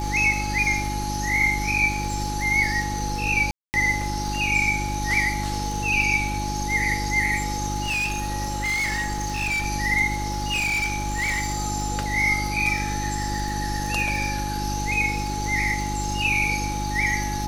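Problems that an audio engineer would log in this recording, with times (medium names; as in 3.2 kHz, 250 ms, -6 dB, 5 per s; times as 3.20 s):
crackle 41 per s -29 dBFS
hum 50 Hz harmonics 7 -29 dBFS
whine 840 Hz -29 dBFS
3.51–3.74 s: dropout 229 ms
7.83–9.66 s: clipped -22 dBFS
10.18–11.66 s: clipped -21 dBFS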